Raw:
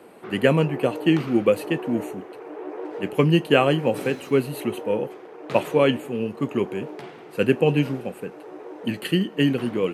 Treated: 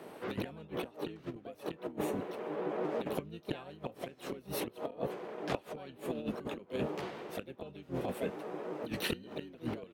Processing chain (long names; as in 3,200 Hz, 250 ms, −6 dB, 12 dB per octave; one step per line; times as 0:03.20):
gate with flip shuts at −13 dBFS, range −28 dB
pitch-shifted copies added −12 semitones −11 dB, +5 semitones −3 dB
compressor whose output falls as the input rises −28 dBFS, ratio −0.5
level −6.5 dB